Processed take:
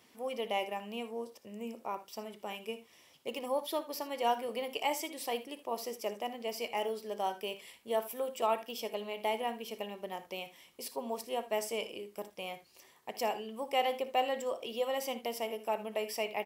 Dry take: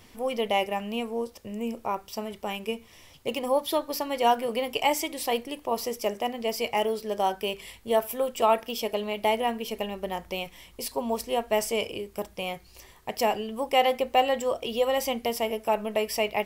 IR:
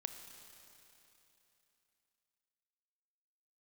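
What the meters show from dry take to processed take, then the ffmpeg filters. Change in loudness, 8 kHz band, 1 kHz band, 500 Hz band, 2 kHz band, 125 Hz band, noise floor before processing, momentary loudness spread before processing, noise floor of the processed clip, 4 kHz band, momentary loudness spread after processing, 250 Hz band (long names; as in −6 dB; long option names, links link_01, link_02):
−8.5 dB, −8.5 dB, −8.5 dB, −8.5 dB, −8.5 dB, below −10 dB, −54 dBFS, 11 LU, −63 dBFS, −8.5 dB, 11 LU, −10.5 dB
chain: -filter_complex "[0:a]highpass=210,asplit=2[link_01][link_02];[link_02]aecho=0:1:59|78:0.168|0.133[link_03];[link_01][link_03]amix=inputs=2:normalize=0,volume=-8.5dB"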